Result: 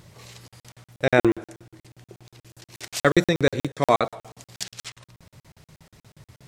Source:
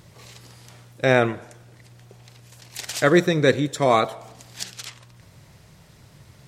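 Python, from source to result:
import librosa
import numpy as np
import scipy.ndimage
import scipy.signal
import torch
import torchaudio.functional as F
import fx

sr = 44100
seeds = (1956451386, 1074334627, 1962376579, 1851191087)

y = fx.peak_eq(x, sr, hz=330.0, db=13.5, octaves=0.29, at=(1.18, 2.88))
y = fx.buffer_crackle(y, sr, first_s=0.48, period_s=0.12, block=2048, kind='zero')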